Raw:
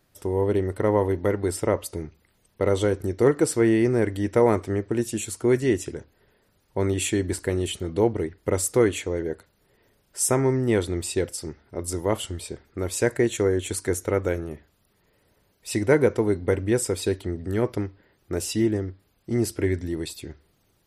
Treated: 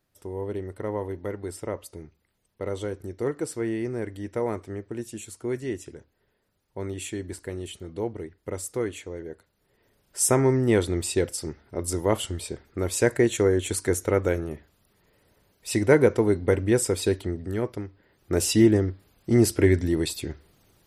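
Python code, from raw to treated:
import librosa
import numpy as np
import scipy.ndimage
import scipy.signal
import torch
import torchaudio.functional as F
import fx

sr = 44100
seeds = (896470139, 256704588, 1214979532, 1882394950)

y = fx.gain(x, sr, db=fx.line((9.32, -9.0), (10.24, 1.0), (17.2, 1.0), (17.83, -6.5), (18.42, 5.0)))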